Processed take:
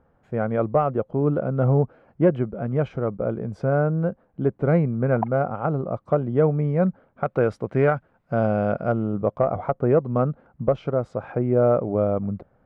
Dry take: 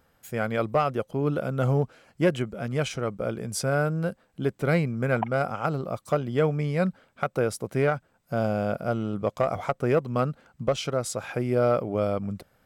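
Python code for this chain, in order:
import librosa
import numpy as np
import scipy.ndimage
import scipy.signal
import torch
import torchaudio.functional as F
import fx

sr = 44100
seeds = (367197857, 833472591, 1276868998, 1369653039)

y = fx.lowpass(x, sr, hz=fx.steps((0.0, 1000.0), (7.26, 1800.0), (8.92, 1000.0)), slope=12)
y = F.gain(torch.from_numpy(y), 4.5).numpy()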